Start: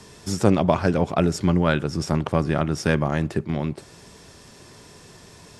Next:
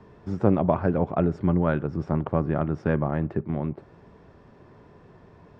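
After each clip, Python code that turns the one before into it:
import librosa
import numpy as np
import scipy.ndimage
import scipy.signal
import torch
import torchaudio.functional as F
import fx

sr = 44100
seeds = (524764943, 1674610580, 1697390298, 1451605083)

y = scipy.signal.sosfilt(scipy.signal.butter(2, 1300.0, 'lowpass', fs=sr, output='sos'), x)
y = y * librosa.db_to_amplitude(-2.5)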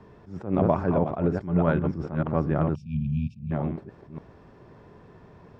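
y = fx.reverse_delay(x, sr, ms=279, wet_db=-6.0)
y = fx.spec_erase(y, sr, start_s=2.74, length_s=0.77, low_hz=250.0, high_hz=2300.0)
y = fx.attack_slew(y, sr, db_per_s=150.0)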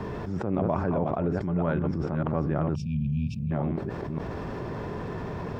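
y = fx.env_flatten(x, sr, amount_pct=70)
y = y * librosa.db_to_amplitude(-6.0)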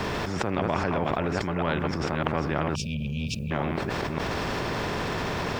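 y = fx.spectral_comp(x, sr, ratio=2.0)
y = y * librosa.db_to_amplitude(4.0)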